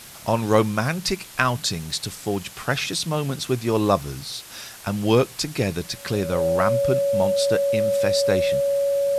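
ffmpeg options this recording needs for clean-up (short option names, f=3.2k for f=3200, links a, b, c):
-af "adeclick=t=4,bandreject=f=560:w=30,afwtdn=0.0089"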